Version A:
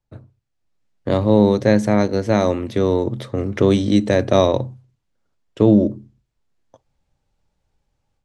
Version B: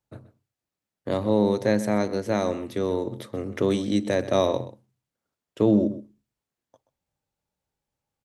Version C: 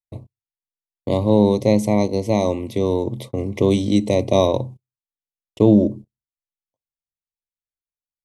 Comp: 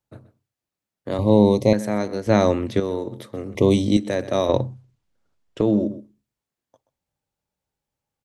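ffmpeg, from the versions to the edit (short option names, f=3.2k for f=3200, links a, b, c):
-filter_complex "[2:a]asplit=2[a][b];[0:a]asplit=2[c][d];[1:a]asplit=5[e][f][g][h][i];[e]atrim=end=1.192[j];[a]atrim=start=1.188:end=1.732[k];[f]atrim=start=1.728:end=2.272[l];[c]atrim=start=2.268:end=2.802[m];[g]atrim=start=2.798:end=3.552[n];[b]atrim=start=3.548:end=3.972[o];[h]atrim=start=3.968:end=4.492[p];[d]atrim=start=4.488:end=5.612[q];[i]atrim=start=5.608[r];[j][k]acrossfade=d=0.004:c1=hsin:c2=hsin[s];[s][l]acrossfade=d=0.004:c1=hsin:c2=hsin[t];[t][m]acrossfade=d=0.004:c1=hsin:c2=hsin[u];[u][n]acrossfade=d=0.004:c1=hsin:c2=hsin[v];[v][o]acrossfade=d=0.004:c1=hsin:c2=hsin[w];[w][p]acrossfade=d=0.004:c1=hsin:c2=hsin[x];[x][q]acrossfade=d=0.004:c1=hsin:c2=hsin[y];[y][r]acrossfade=d=0.004:c1=hsin:c2=hsin"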